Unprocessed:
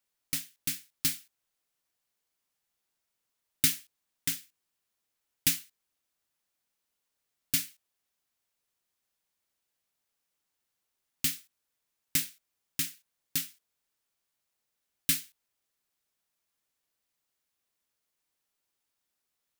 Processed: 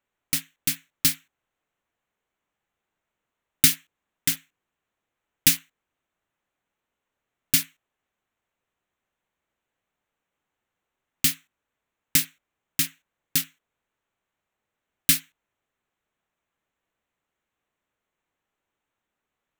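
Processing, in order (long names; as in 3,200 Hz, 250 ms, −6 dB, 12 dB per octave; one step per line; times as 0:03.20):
adaptive Wiener filter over 9 samples
level +8 dB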